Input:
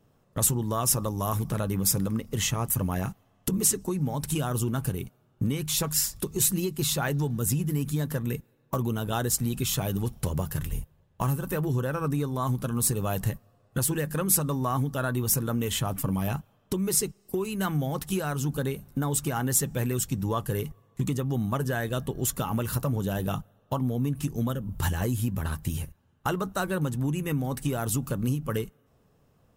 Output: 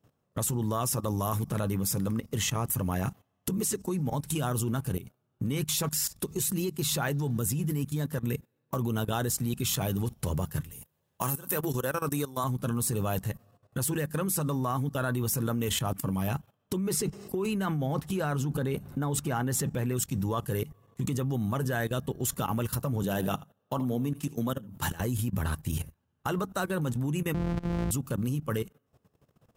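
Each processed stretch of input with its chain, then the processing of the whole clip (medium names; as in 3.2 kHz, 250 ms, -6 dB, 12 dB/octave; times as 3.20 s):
10.71–12.44 s: high-pass 260 Hz 6 dB/octave + treble shelf 4.7 kHz +10.5 dB
16.77–19.97 s: treble shelf 4.1 kHz -9 dB + level flattener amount 50%
23.03–25.00 s: high-pass 140 Hz + delay 80 ms -17 dB
27.34–27.91 s: sorted samples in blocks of 256 samples + RIAA curve playback
whole clip: high-pass 58 Hz 12 dB/octave; level held to a coarse grid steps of 16 dB; trim +3 dB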